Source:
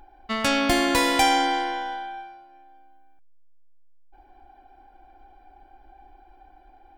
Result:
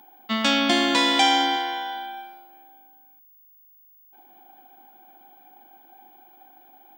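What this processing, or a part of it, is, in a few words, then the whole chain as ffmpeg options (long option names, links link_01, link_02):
old television with a line whistle: -filter_complex "[0:a]highpass=frequency=200:width=0.5412,highpass=frequency=200:width=1.3066,equalizer=frequency=220:width_type=q:width=4:gain=7,equalizer=frequency=450:width_type=q:width=4:gain=-8,equalizer=frequency=3400:width_type=q:width=4:gain=9,lowpass=frequency=7600:width=0.5412,lowpass=frequency=7600:width=1.3066,aeval=exprs='val(0)+0.00251*sin(2*PI*15625*n/s)':channel_layout=same,asettb=1/sr,asplit=3[link_01][link_02][link_03];[link_01]atrim=end=1.564[link_04];[link_02]atrim=start=1.56:end=1.96,asetpts=PTS-STARTPTS,afade=type=in:duration=0.004:curve=qsin,afade=type=out:start_time=0.396:duration=0.004:curve=qsin,bass=frequency=250:gain=-12,treble=frequency=4000:gain=-1[link_05];[link_03]atrim=start=1.956[link_06];[link_04][link_05]acrossfade=duration=0.004:curve1=hsin:curve2=qsin[link_07];[link_07][link_06]acrossfade=duration=0.004:curve1=qsin:curve2=hsin"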